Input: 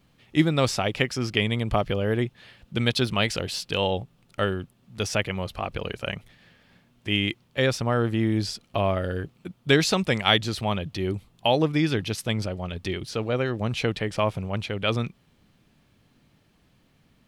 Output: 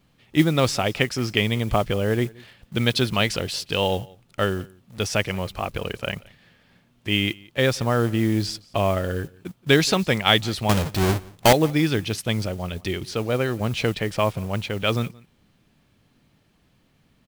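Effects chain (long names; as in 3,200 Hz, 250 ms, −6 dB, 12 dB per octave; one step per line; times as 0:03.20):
0:10.69–0:11.53: each half-wave held at its own peak
noise that follows the level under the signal 24 dB
in parallel at −10.5 dB: bit reduction 7 bits
on the sum: single-tap delay 176 ms −24 dB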